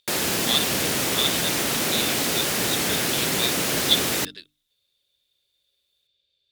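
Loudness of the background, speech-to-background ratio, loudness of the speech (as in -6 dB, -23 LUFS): -22.0 LUFS, -5.5 dB, -27.5 LUFS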